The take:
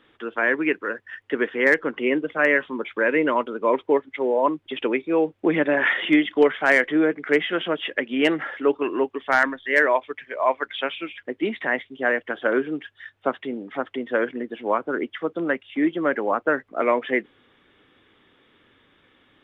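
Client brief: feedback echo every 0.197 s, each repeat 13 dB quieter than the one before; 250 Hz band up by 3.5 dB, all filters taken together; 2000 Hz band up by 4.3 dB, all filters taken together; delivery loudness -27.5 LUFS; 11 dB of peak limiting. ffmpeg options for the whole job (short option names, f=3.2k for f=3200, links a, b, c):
-af "equalizer=f=250:t=o:g=4.5,equalizer=f=2k:t=o:g=5,alimiter=limit=-13dB:level=0:latency=1,aecho=1:1:197|394|591:0.224|0.0493|0.0108,volume=-3.5dB"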